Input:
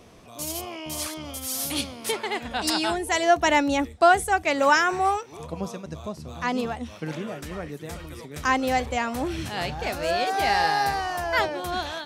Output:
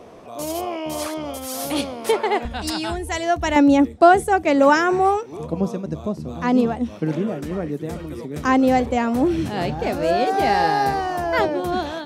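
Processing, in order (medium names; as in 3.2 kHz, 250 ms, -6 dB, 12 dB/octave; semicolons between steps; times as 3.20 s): peaking EQ 570 Hz +14 dB 3 oct, from 2.45 s 64 Hz, from 3.56 s 270 Hz; trim -2.5 dB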